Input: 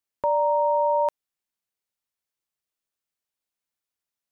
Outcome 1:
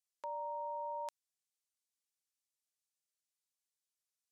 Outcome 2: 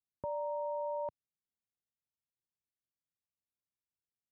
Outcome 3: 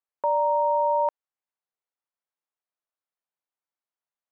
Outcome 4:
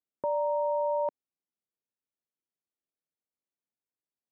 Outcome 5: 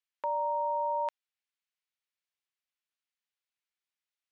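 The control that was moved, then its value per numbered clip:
resonant band-pass, frequency: 7,300, 110, 870, 280, 2,500 Hertz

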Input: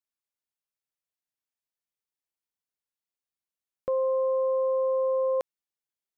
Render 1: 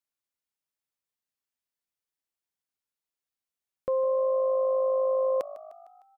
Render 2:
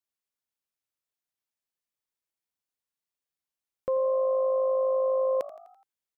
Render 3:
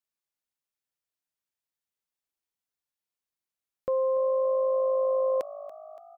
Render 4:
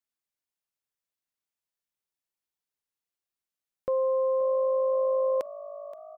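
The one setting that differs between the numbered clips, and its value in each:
echo with shifted repeats, delay time: 152, 84, 285, 525 milliseconds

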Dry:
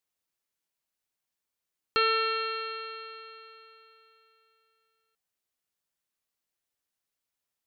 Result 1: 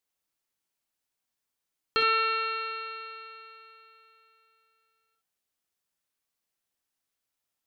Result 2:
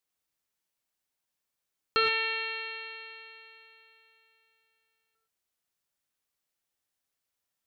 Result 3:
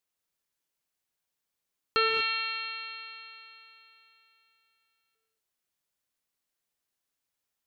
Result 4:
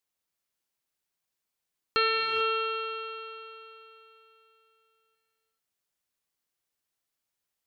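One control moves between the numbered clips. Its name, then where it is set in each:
reverb whose tail is shaped and stops, gate: 80, 140, 260, 460 milliseconds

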